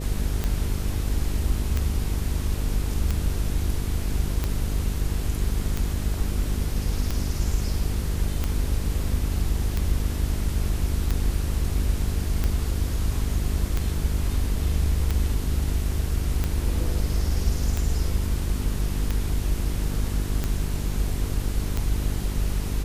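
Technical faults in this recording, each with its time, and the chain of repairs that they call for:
buzz 50 Hz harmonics 9 -28 dBFS
tick 45 rpm -12 dBFS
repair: de-click; de-hum 50 Hz, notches 9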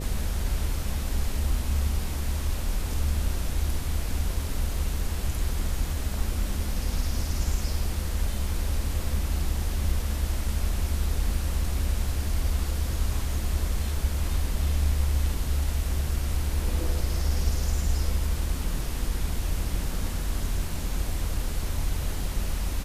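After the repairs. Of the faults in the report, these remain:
none

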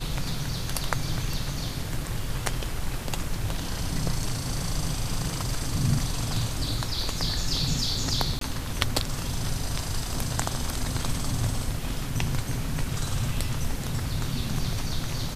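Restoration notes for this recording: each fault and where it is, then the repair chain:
8.39–8.41 gap 23 ms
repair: interpolate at 8.39, 23 ms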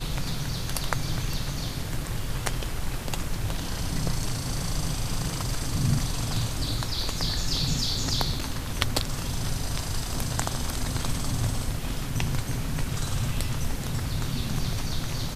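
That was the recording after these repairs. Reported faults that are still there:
none

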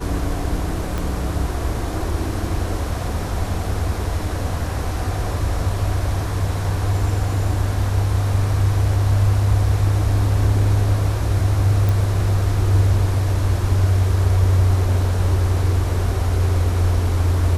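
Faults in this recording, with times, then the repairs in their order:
0.98 pop
11.89 pop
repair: de-click

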